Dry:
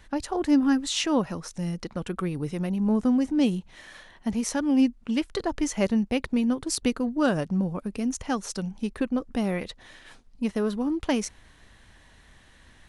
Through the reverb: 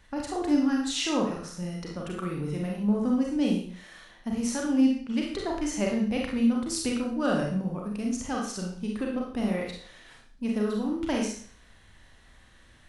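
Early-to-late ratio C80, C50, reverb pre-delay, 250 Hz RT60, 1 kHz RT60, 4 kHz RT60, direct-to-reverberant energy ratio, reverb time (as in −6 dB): 7.0 dB, 3.5 dB, 34 ms, 0.45 s, 0.50 s, 0.50 s, −1.5 dB, 0.50 s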